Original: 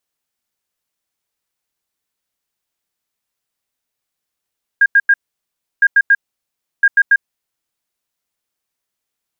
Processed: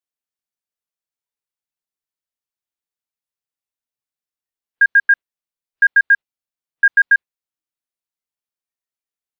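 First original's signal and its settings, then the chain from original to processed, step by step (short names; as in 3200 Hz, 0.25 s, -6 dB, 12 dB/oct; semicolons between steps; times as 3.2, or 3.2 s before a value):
beep pattern sine 1620 Hz, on 0.05 s, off 0.09 s, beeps 3, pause 0.68 s, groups 3, -6 dBFS
spectral noise reduction 14 dB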